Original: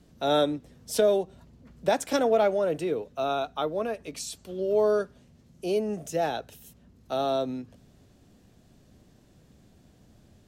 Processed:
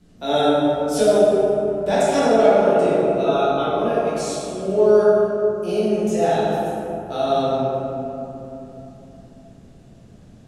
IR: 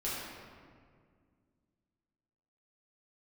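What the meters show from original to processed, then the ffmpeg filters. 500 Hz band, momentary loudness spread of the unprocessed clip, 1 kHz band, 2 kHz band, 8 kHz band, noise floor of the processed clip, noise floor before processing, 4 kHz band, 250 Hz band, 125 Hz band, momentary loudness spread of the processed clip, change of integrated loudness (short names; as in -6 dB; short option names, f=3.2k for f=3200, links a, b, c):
+10.0 dB, 13 LU, +9.5 dB, +7.5 dB, +5.5 dB, -47 dBFS, -59 dBFS, +5.5 dB, +10.5 dB, +11.5 dB, 13 LU, +9.0 dB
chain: -filter_complex "[1:a]atrim=start_sample=2205,asetrate=23373,aresample=44100[a];[0:a][a]afir=irnorm=-1:irlink=0,volume=-1dB"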